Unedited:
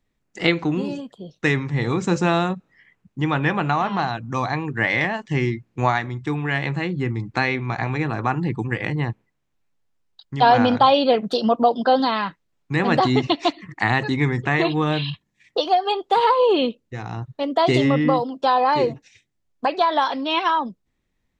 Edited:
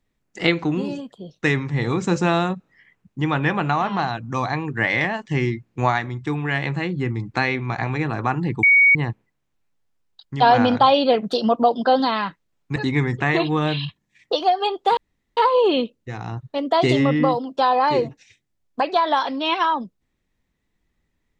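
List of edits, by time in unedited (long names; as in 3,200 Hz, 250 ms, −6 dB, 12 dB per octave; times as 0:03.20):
0:08.63–0:08.95: beep over 2,240 Hz −10 dBFS
0:12.76–0:14.01: remove
0:16.22: splice in room tone 0.40 s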